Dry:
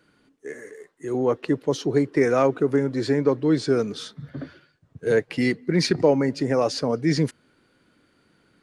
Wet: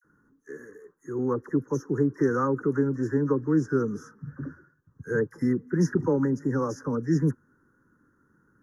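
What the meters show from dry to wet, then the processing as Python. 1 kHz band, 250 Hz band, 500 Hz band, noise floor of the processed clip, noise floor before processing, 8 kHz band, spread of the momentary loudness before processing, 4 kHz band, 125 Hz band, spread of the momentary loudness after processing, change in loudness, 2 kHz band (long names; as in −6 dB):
−4.5 dB, −2.0 dB, −6.5 dB, −68 dBFS, −64 dBFS, −9.0 dB, 18 LU, below −20 dB, −0.5 dB, 18 LU, −4.0 dB, −6.5 dB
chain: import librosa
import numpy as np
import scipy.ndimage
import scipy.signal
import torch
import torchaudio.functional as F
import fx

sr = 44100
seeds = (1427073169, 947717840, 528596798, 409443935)

y = scipy.signal.sosfilt(scipy.signal.cheby2(4, 40, [2300.0, 4600.0], 'bandstop', fs=sr, output='sos'), x)
y = fx.fixed_phaser(y, sr, hz=2500.0, stages=6)
y = fx.dispersion(y, sr, late='lows', ms=46.0, hz=1100.0)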